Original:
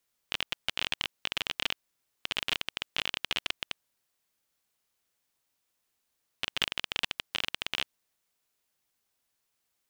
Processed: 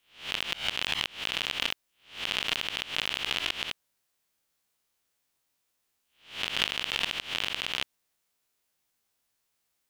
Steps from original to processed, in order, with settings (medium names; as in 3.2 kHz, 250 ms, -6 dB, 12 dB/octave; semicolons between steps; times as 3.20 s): reverse spectral sustain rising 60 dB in 0.40 s